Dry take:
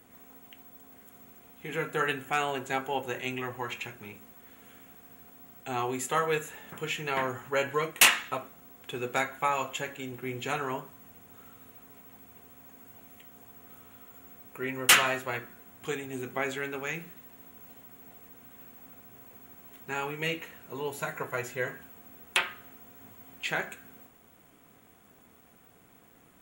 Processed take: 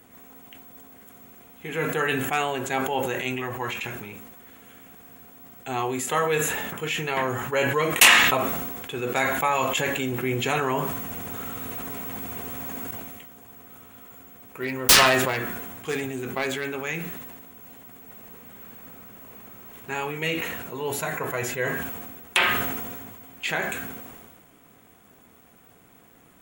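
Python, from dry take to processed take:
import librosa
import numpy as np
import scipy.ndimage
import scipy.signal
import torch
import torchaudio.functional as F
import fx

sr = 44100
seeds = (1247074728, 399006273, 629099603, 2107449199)

y = fx.env_flatten(x, sr, amount_pct=50, at=(9.21, 12.91))
y = fx.self_delay(y, sr, depth_ms=0.3, at=(14.23, 16.65))
y = fx.reverb_throw(y, sr, start_s=18.02, length_s=1.76, rt60_s=2.2, drr_db=0.0)
y = fx.dynamic_eq(y, sr, hz=1400.0, q=7.4, threshold_db=-47.0, ratio=4.0, max_db=-5)
y = fx.sustainer(y, sr, db_per_s=33.0)
y = y * librosa.db_to_amplitude(4.0)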